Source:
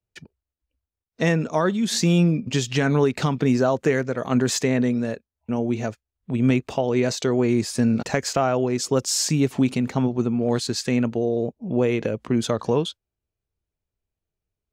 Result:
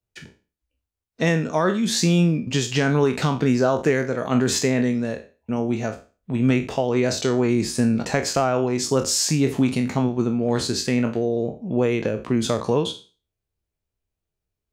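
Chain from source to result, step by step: spectral trails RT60 0.34 s

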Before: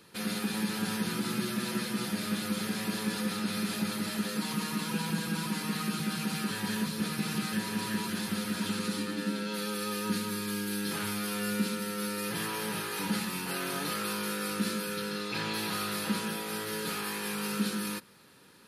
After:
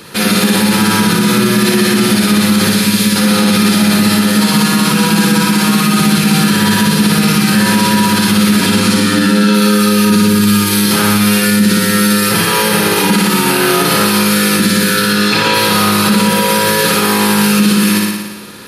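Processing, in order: 2.7–3.16 bell 650 Hz -11.5 dB 2.4 oct; on a send: flutter echo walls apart 9.9 m, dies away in 1.1 s; on the sum: maximiser +23 dB; gain -1 dB

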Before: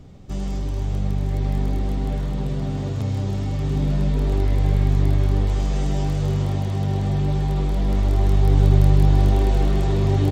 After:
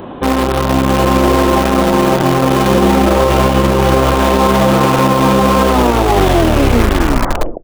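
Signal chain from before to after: tape stop at the end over 2.62 s; speed mistake 33 rpm record played at 45 rpm; band shelf 580 Hz +9 dB 2.8 oct; on a send: echo 0.107 s -22 dB; on the sum: downsampling 8000 Hz; tilt +3 dB/oct; in parallel at -5.5 dB: bit-crush 4-bit; on the sum: maximiser +18.5 dB; gain -2 dB

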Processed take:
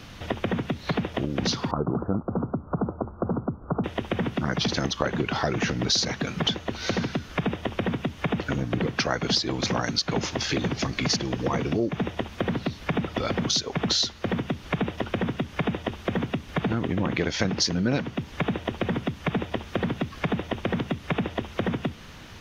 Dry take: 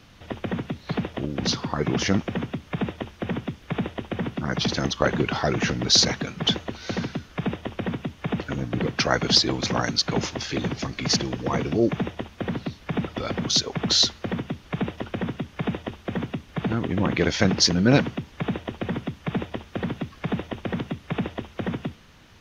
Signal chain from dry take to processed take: compressor 4:1, threshold -32 dBFS, peak gain reduction 16.5 dB; 1.71–3.84 steep low-pass 1400 Hz 96 dB/oct; gain +8 dB

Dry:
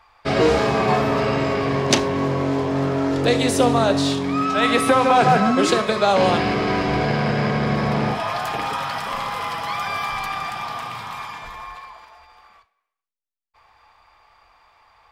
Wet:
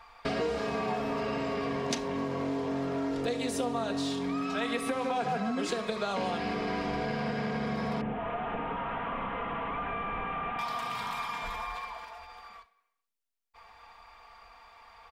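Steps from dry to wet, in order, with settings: 8.01–10.59 delta modulation 16 kbps, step -36 dBFS; comb 4.3 ms, depth 54%; compressor 4:1, threshold -32 dBFS, peak gain reduction 19 dB

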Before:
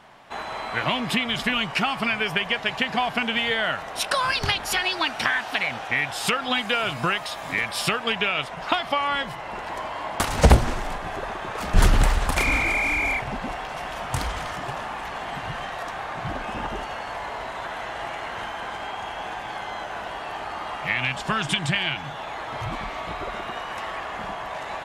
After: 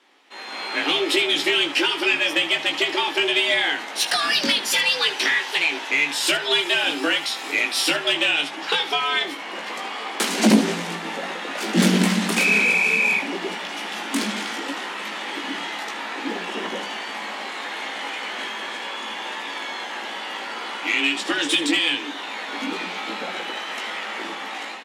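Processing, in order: HPF 75 Hz 6 dB/oct; passive tone stack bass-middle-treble 10-0-1; AGC gain up to 11 dB; overdrive pedal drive 26 dB, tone 4800 Hz, clips at -6.5 dBFS; frequency shift +150 Hz; early reflections 18 ms -5 dB, 77 ms -13.5 dB

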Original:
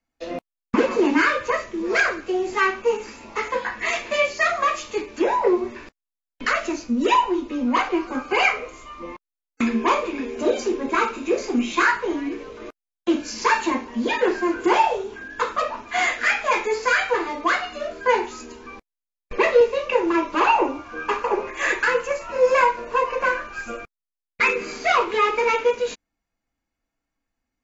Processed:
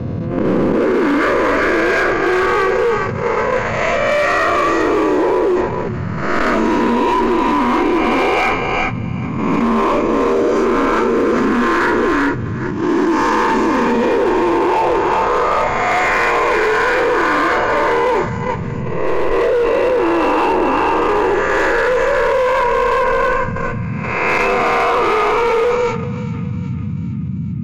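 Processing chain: spectral swells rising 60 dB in 2.48 s; on a send: thinning echo 0.397 s, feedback 55%, high-pass 650 Hz, level -4.5 dB; on the sum: dynamic EQ 3000 Hz, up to -3 dB, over -29 dBFS, Q 1.4; gate -18 dBFS, range -26 dB; band noise 91–230 Hz -48 dBFS; tilt -3 dB/oct; limiter -7.5 dBFS, peak gain reduction 10 dB; hard clip -12 dBFS, distortion -17 dB; notches 50/100/150/200/250 Hz; fast leveller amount 70%

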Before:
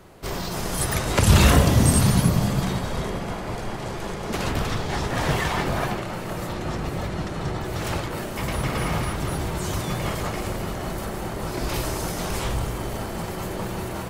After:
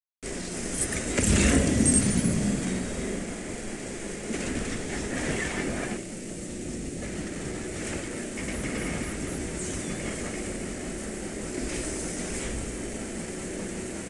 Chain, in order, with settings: 2.24–3.24 doubler 49 ms -5 dB; bit-crush 6-bit; ten-band EQ 125 Hz -7 dB, 250 Hz +10 dB, 500 Hz +3 dB, 1000 Hz -11 dB, 2000 Hz +8 dB, 4000 Hz -6 dB, 8000 Hz +11 dB; downsampling 22050 Hz; 5.97–7.02 bell 1300 Hz -8.5 dB 2.2 oct; gain -7.5 dB

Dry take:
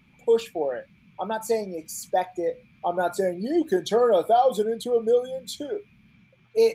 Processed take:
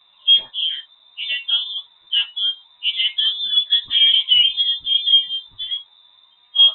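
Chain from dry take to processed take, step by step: pitch shift by moving bins +3 st; air absorption 310 m; inverted band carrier 3800 Hz; gain +8 dB

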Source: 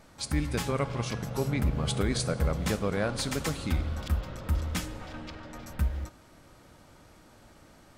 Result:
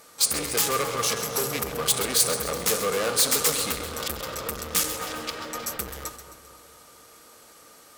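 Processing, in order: gate -45 dBFS, range -7 dB; tube stage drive 33 dB, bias 0.35; in parallel at -3.5 dB: overloaded stage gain 35 dB; on the sum: RIAA curve recording; small resonant body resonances 460/1200 Hz, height 11 dB, ringing for 45 ms; on a send: split-band echo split 1600 Hz, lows 0.237 s, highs 0.132 s, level -11 dB; on the sum: gain +5 dB

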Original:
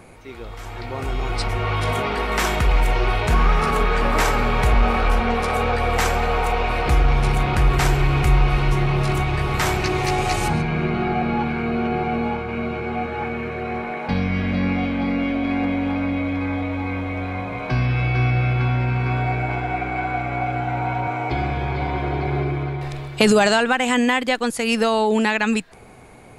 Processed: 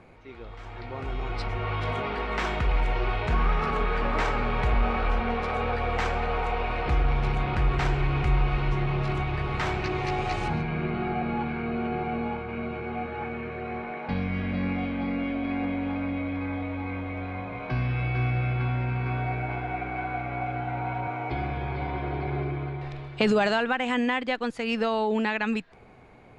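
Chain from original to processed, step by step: LPF 3700 Hz 12 dB/oct; gain -7 dB

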